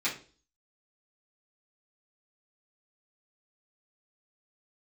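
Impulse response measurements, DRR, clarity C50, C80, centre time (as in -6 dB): -10.0 dB, 9.5 dB, 15.0 dB, 21 ms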